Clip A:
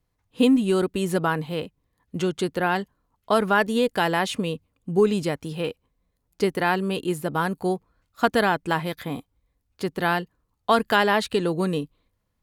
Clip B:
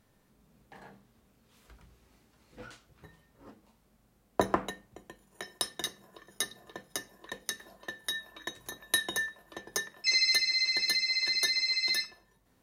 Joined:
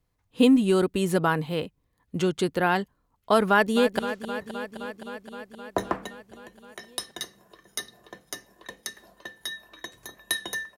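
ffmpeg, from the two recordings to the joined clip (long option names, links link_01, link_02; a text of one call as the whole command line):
ffmpeg -i cue0.wav -i cue1.wav -filter_complex "[0:a]apad=whole_dur=10.77,atrim=end=10.77,atrim=end=3.992[link_01];[1:a]atrim=start=2.618:end=9.4[link_02];[link_01][link_02]acrossfade=duration=0.004:curve1=hsin:curve2=hsin,asplit=2[link_03][link_04];[link_04]afade=type=in:start_time=3.49:duration=0.01,afade=type=out:start_time=3.99:duration=0.01,aecho=0:1:260|520|780|1040|1300|1560|1820|2080|2340|2600|2860|3120:0.266073|0.212858|0.170286|0.136229|0.108983|0.0871866|0.0697493|0.0557994|0.0446396|0.0357116|0.0285693|0.0228555[link_05];[link_03][link_05]amix=inputs=2:normalize=0" out.wav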